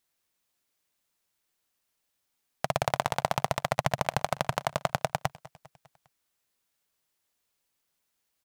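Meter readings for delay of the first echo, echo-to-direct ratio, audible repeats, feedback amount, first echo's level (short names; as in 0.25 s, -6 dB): 0.201 s, -19.5 dB, 3, 55%, -21.0 dB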